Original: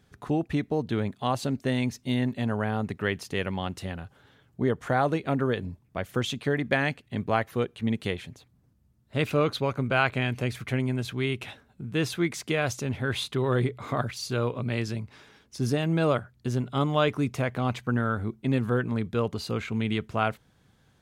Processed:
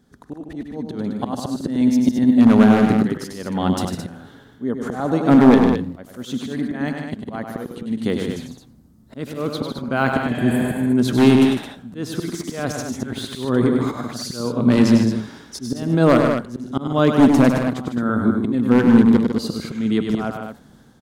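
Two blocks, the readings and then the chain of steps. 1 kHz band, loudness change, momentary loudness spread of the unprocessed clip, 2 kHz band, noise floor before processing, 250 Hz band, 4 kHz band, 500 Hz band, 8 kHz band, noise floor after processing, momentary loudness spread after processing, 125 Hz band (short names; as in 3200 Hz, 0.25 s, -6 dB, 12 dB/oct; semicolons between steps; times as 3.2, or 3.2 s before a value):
+5.5 dB, +10.0 dB, 8 LU, +2.5 dB, -64 dBFS, +14.0 dB, +3.0 dB, +7.0 dB, +6.5 dB, -48 dBFS, 17 LU, +4.0 dB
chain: spectral repair 10.33–10.89, 400–7500 Hz both; de-esser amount 75%; fifteen-band EQ 100 Hz -8 dB, 250 Hz +10 dB, 2500 Hz -10 dB; AGC gain up to 12 dB; auto swell 0.432 s; wavefolder -8 dBFS; on a send: loudspeakers at several distances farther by 34 m -6 dB, 52 m -8 dB, 74 m -8 dB; on the sum: warbling echo 84 ms, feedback 48%, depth 162 cents, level -22.5 dB; gain +2 dB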